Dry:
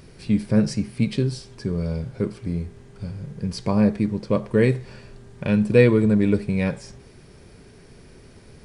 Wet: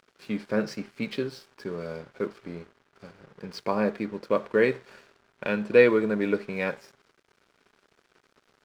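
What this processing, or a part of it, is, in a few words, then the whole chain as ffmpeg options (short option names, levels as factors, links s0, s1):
pocket radio on a weak battery: -af "highpass=370,lowpass=4100,aeval=exprs='sgn(val(0))*max(abs(val(0))-0.00282,0)':c=same,equalizer=f=1400:t=o:w=0.52:g=5.5"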